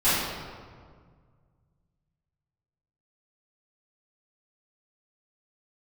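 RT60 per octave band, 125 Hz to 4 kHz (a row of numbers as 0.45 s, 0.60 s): 3.0 s, 2.2 s, 1.9 s, 1.8 s, 1.4 s, 1.1 s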